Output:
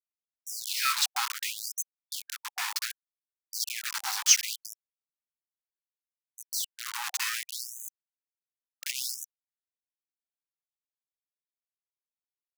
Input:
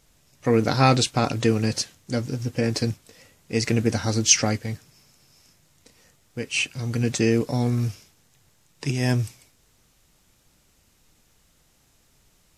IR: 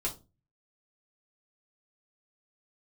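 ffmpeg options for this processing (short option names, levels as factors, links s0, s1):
-af "acrusher=bits=3:mix=0:aa=0.000001,afftfilt=real='re*gte(b*sr/1024,730*pow(6200/730,0.5+0.5*sin(2*PI*0.67*pts/sr)))':imag='im*gte(b*sr/1024,730*pow(6200/730,0.5+0.5*sin(2*PI*0.67*pts/sr)))':win_size=1024:overlap=0.75,volume=0.668"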